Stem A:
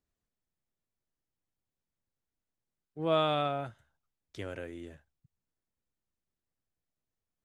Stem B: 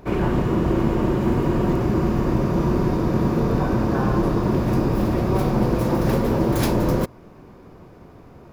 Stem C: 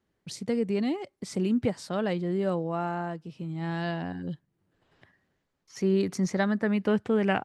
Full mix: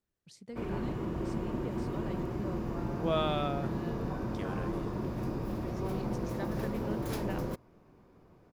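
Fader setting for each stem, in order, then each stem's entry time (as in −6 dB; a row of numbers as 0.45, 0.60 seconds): −3.0, −15.0, −16.0 decibels; 0.00, 0.50, 0.00 seconds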